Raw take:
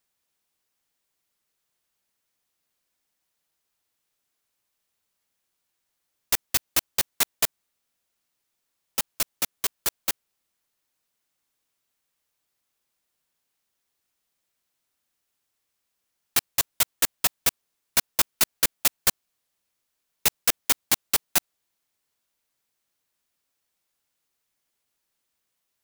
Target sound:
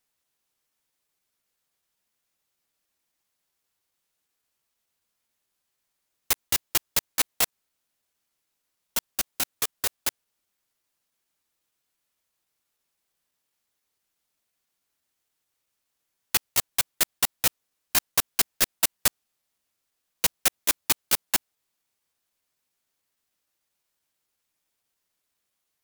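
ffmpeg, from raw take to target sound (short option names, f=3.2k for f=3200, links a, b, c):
-af "asetrate=48091,aresample=44100,atempo=0.917004"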